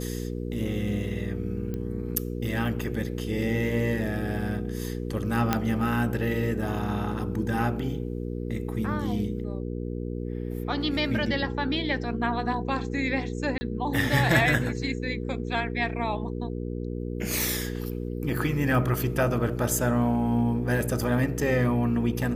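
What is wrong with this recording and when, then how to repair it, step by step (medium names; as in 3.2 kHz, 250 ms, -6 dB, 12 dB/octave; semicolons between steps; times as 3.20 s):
hum 60 Hz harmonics 8 -32 dBFS
1.74 s: pop -21 dBFS
5.53 s: pop -8 dBFS
13.58–13.61 s: dropout 30 ms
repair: de-click; de-hum 60 Hz, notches 8; interpolate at 13.58 s, 30 ms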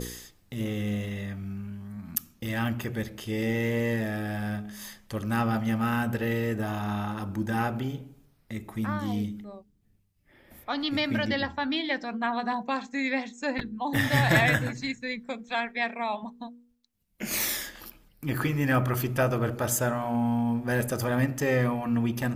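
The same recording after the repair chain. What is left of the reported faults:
nothing left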